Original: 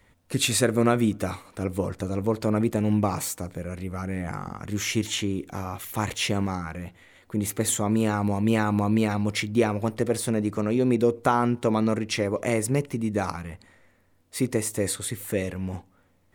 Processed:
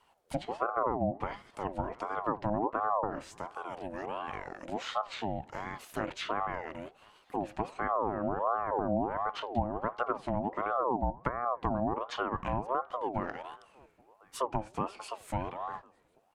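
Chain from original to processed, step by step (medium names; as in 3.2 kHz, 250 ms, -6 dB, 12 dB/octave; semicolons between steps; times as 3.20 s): echo from a far wall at 180 m, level -28 dB; low-pass that closes with the level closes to 370 Hz, closed at -17.5 dBFS; ring modulator with a swept carrier 690 Hz, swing 40%, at 1.4 Hz; trim -4.5 dB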